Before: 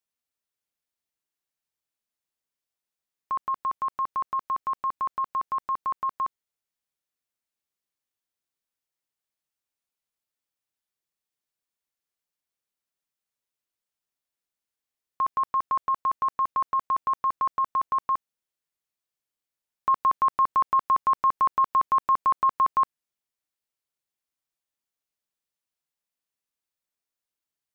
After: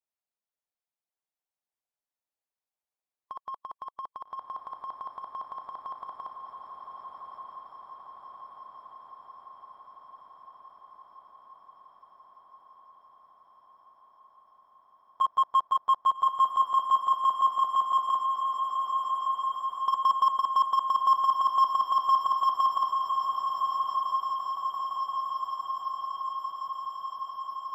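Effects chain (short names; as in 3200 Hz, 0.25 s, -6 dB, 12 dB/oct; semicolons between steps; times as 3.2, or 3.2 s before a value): in parallel at -4 dB: wavefolder -24.5 dBFS; on the sum: bell 740 Hz +11.5 dB 1.3 oct; level quantiser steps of 15 dB; harmonic-percussive split harmonic -17 dB; diffused feedback echo 1.23 s, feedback 74%, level -4 dB; gain -4.5 dB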